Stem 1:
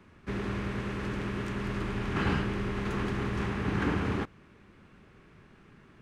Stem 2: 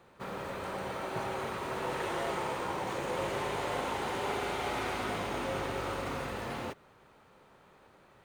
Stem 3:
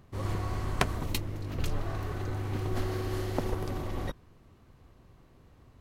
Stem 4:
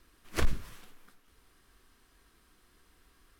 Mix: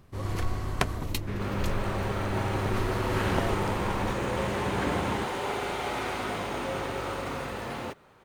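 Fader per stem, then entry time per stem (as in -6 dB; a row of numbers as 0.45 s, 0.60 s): -2.0 dB, +2.5 dB, +0.5 dB, -6.0 dB; 1.00 s, 1.20 s, 0.00 s, 0.00 s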